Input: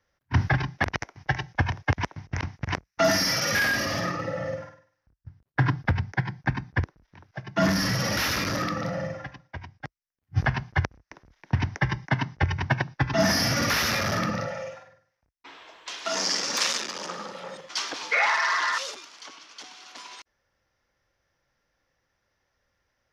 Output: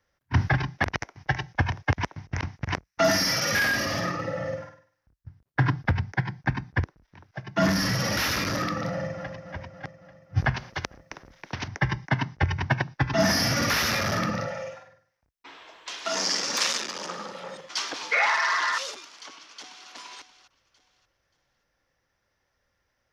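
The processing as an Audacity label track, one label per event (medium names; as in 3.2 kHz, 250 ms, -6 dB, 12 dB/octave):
8.890000	9.310000	echo throw 280 ms, feedback 60%, level -8.5 dB
10.560000	11.680000	spectrum-flattening compressor 2:1
19.340000	19.890000	echo throw 580 ms, feedback 25%, level -10 dB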